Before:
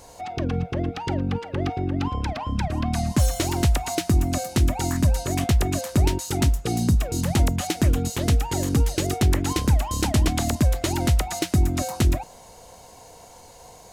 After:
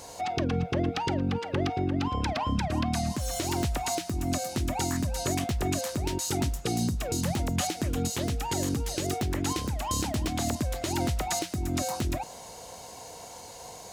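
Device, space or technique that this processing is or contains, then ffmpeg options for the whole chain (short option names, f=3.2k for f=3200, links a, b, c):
broadcast voice chain: -af "highpass=f=100:p=1,deesser=0.5,acompressor=threshold=-23dB:ratio=4,equalizer=f=4.9k:t=o:w=1.7:g=3,alimiter=limit=-20dB:level=0:latency=1:release=277,volume=2dB"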